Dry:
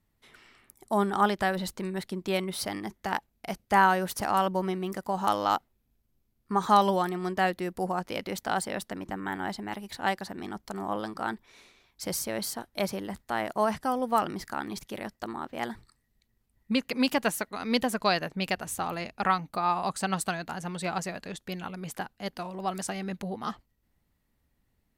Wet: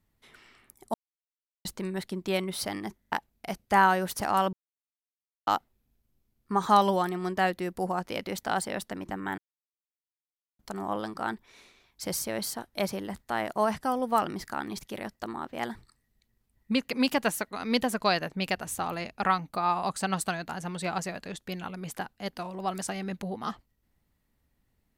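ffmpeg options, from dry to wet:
ffmpeg -i in.wav -filter_complex "[0:a]asplit=10[link_01][link_02][link_03][link_04][link_05][link_06][link_07][link_08][link_09][link_10];[link_01]atrim=end=0.94,asetpts=PTS-STARTPTS,afade=type=out:start_time=0.936:duration=0.004:curve=hsin[link_11];[link_02]atrim=start=0.94:end=1.65,asetpts=PTS-STARTPTS,volume=0[link_12];[link_03]atrim=start=1.65:end=3.042,asetpts=PTS-STARTPTS,afade=type=in:duration=0.004:curve=hsin[link_13];[link_04]atrim=start=2.998:end=3.042[link_14];[link_05]atrim=start=2.998:end=3.042[link_15];[link_06]atrim=start=3.118:end=4.53,asetpts=PTS-STARTPTS,afade=type=out:start_time=1.408:duration=0.004:curve=hsin[link_16];[link_07]atrim=start=4.53:end=5.47,asetpts=PTS-STARTPTS,volume=0[link_17];[link_08]atrim=start=5.47:end=9.38,asetpts=PTS-STARTPTS,afade=type=in:duration=0.004:curve=hsin,afade=type=out:start_time=3.906:duration=0.004:curve=hsin[link_18];[link_09]atrim=start=9.38:end=10.59,asetpts=PTS-STARTPTS,volume=0[link_19];[link_10]atrim=start=10.59,asetpts=PTS-STARTPTS,afade=type=in:duration=0.004:curve=hsin[link_20];[link_11][link_12][link_13]concat=n=3:v=0:a=1[link_21];[link_21][link_14]acrossfade=duration=0.004:curve1=hsin:curve2=hsin[link_22];[link_22][link_15]acrossfade=duration=0.004:curve1=hsin:curve2=hsin[link_23];[link_16][link_17][link_18][link_19][link_20]concat=n=5:v=0:a=1[link_24];[link_23][link_24]acrossfade=duration=0.004:curve1=hsin:curve2=hsin" out.wav

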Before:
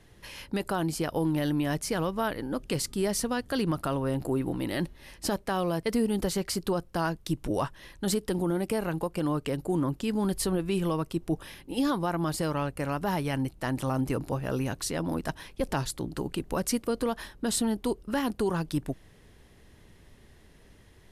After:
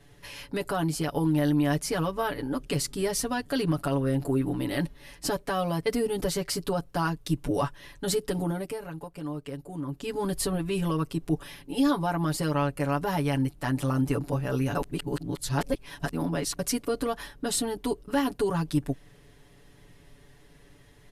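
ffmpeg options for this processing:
ffmpeg -i in.wav -filter_complex "[0:a]asplit=5[link_01][link_02][link_03][link_04][link_05];[link_01]atrim=end=8.79,asetpts=PTS-STARTPTS,afade=type=out:start_time=8.48:duration=0.31:silence=0.334965[link_06];[link_02]atrim=start=8.79:end=9.86,asetpts=PTS-STARTPTS,volume=-9.5dB[link_07];[link_03]atrim=start=9.86:end=14.752,asetpts=PTS-STARTPTS,afade=type=in:duration=0.31:silence=0.334965[link_08];[link_04]atrim=start=14.748:end=16.592,asetpts=PTS-STARTPTS,areverse[link_09];[link_05]atrim=start=16.588[link_10];[link_06][link_07][link_08]concat=n=3:v=0:a=1[link_11];[link_11][link_09]acrossfade=duration=0.004:curve1=hsin:curve2=hsin[link_12];[link_12][link_10]acrossfade=duration=0.004:curve1=hsin:curve2=hsin,aecho=1:1:7:0.93,volume=-1.5dB" out.wav

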